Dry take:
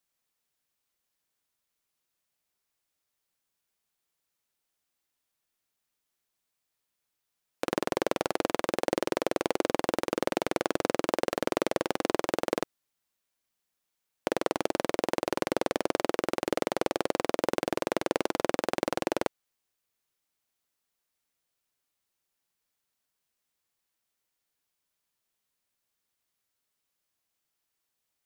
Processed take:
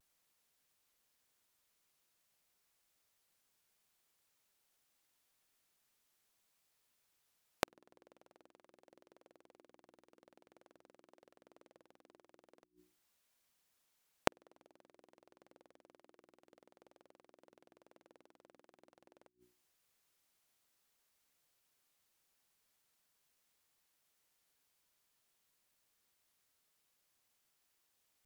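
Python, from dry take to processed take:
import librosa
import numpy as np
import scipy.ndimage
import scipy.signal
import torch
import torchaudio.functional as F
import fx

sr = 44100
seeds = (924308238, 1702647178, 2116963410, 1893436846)

y = fx.hum_notches(x, sr, base_hz=60, count=6)
y = fx.vibrato(y, sr, rate_hz=0.48, depth_cents=27.0)
y = fx.gate_flip(y, sr, shuts_db=-21.0, range_db=-41)
y = F.gain(torch.from_numpy(y), 3.5).numpy()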